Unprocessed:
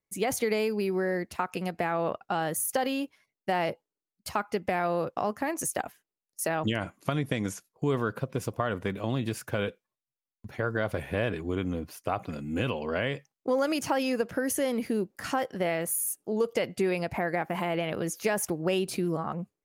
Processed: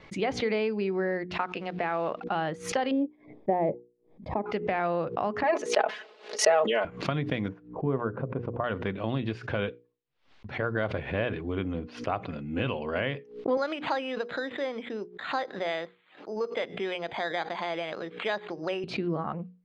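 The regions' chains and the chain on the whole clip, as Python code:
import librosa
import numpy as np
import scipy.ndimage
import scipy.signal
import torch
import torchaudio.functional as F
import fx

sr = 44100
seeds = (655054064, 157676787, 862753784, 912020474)

y = fx.chain(x, sr, fx.highpass(hz=240.0, slope=6),
    fx.quant_companded(bits=6), at=(1.32, 2.27))
y = fx.chain(y, sr, fx.moving_average(points=31),
    fx.peak_eq(hz=420.0, db=7.0, octaves=2.5), at=(2.91, 4.46))
y = fx.chain(y, sr, fx.highpass_res(hz=490.0, q=2.5),
    fx.comb(ms=4.7, depth=0.76),
    fx.sustainer(db_per_s=85.0), at=(5.43, 6.85))
y = fx.chain(y, sr, fx.lowpass(hz=1100.0, slope=12),
    fx.hum_notches(base_hz=60, count=8), at=(7.48, 8.64))
y = fx.chain(y, sr, fx.weighting(curve='A'),
    fx.resample_bad(factor=8, down='filtered', up='hold'), at=(13.57, 18.84))
y = scipy.signal.sosfilt(scipy.signal.butter(4, 3900.0, 'lowpass', fs=sr, output='sos'), y)
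y = fx.hum_notches(y, sr, base_hz=60, count=8)
y = fx.pre_swell(y, sr, db_per_s=130.0)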